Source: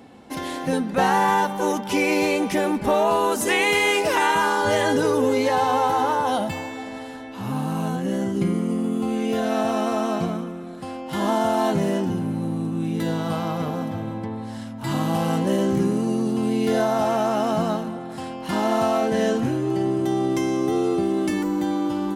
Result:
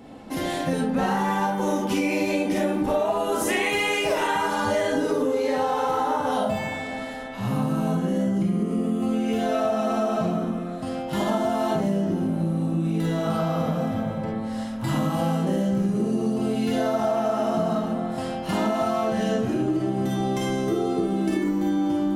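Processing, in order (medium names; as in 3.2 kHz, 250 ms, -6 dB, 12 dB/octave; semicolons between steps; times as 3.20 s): bass shelf 370 Hz +5.5 dB; algorithmic reverb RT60 0.55 s, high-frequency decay 0.45×, pre-delay 5 ms, DRR -3.5 dB; compression, threshold -18 dBFS, peak gain reduction 11 dB; trim -2.5 dB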